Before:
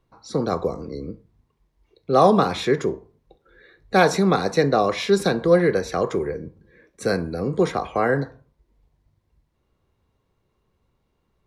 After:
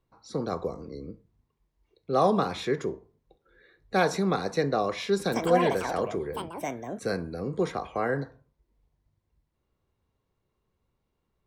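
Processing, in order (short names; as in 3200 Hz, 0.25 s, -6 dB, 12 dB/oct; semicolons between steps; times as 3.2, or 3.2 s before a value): 5.2–7.57 echoes that change speed 0.119 s, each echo +6 st, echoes 2; gain -7.5 dB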